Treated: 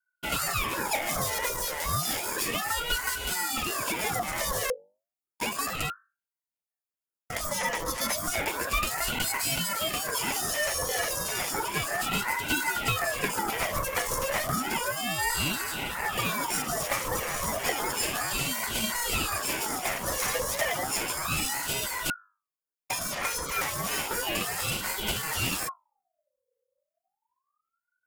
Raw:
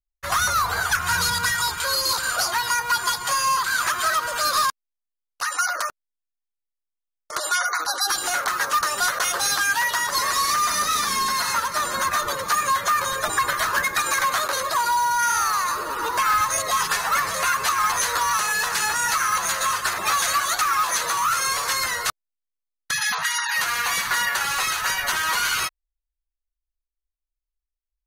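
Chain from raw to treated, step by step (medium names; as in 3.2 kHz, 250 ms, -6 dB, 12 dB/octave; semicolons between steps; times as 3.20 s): comb filter that takes the minimum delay 0.51 ms; hum notches 50/100/150/200/250/300/350 Hz; phase shifter stages 2, 2.7 Hz, lowest notch 280–2000 Hz; ten-band graphic EQ 125 Hz -4 dB, 250 Hz -9 dB, 500 Hz +9 dB, 1 kHz +9 dB, 2 kHz -7 dB, 4 kHz -10 dB, 8 kHz -3 dB; in parallel at +1.5 dB: peak limiter -30.5 dBFS, peak gain reduction 17 dB; on the sum: ring modulator with a swept carrier 1 kHz, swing 50%, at 0.32 Hz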